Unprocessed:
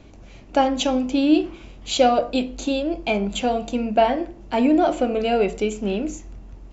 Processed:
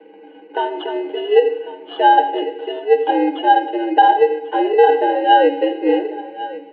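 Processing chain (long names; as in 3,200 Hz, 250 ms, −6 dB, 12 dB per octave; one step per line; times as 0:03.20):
dynamic equaliser 1,400 Hz, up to −7 dB, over −37 dBFS, Q 1.2
resonances in every octave F, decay 0.14 s
in parallel at −5.5 dB: decimation without filtering 20×
on the sum: repeating echo 1,096 ms, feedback 31%, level −17 dB
on a send at −16.5 dB: convolution reverb RT60 1.1 s, pre-delay 92 ms
on the sum: single-sideband voice off tune +110 Hz 210–3,000 Hz
boost into a limiter +17.5 dB
level −1 dB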